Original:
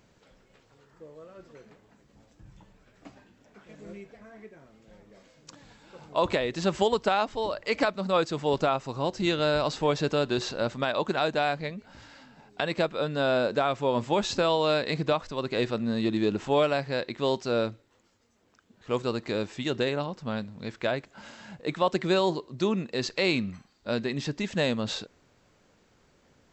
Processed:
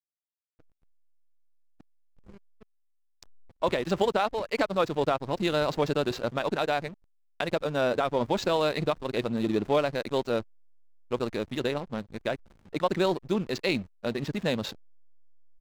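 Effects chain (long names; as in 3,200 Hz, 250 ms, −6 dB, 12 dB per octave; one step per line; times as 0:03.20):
slack as between gear wheels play −33 dBFS
tempo change 1.7×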